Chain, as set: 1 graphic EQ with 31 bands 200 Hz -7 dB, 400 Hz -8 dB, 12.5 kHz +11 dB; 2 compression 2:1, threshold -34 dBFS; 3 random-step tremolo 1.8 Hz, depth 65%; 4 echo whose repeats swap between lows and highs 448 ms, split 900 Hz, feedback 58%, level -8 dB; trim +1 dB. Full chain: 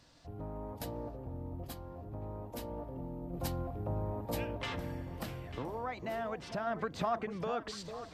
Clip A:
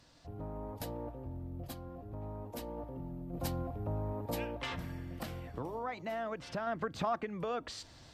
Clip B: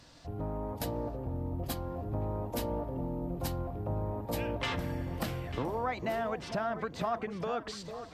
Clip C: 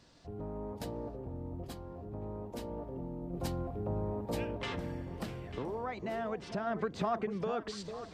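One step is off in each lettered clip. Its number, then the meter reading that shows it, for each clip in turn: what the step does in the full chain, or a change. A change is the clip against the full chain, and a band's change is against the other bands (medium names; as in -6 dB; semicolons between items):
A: 4, echo-to-direct -10.5 dB to none; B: 3, momentary loudness spread change -4 LU; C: 1, 250 Hz band +3.0 dB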